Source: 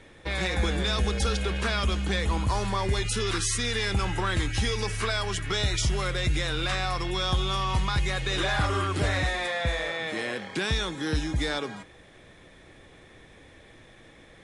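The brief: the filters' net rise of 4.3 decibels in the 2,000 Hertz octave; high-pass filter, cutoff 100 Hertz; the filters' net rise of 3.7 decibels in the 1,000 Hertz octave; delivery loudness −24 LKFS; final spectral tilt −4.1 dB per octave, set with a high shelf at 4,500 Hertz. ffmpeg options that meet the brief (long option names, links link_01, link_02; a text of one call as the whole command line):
ffmpeg -i in.wav -af "highpass=100,equalizer=frequency=1000:width_type=o:gain=3.5,equalizer=frequency=2000:width_type=o:gain=5.5,highshelf=frequency=4500:gain=-7.5,volume=3dB" out.wav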